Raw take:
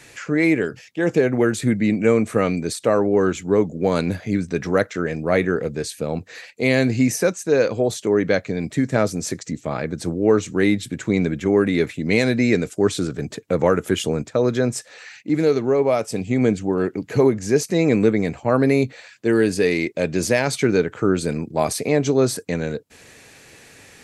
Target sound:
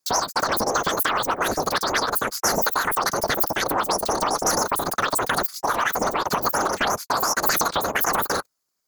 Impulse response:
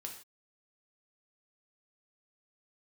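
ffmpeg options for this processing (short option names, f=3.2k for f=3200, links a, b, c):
-af "agate=range=-40dB:threshold=-40dB:ratio=16:detection=peak,afftfilt=real='hypot(re,im)*cos(2*PI*random(0))':imag='hypot(re,im)*sin(2*PI*random(1))':win_size=512:overlap=0.75,acompressor=threshold=-29dB:ratio=6,highshelf=f=2.1k:g=11.5,asetrate=119511,aresample=44100,volume=9dB"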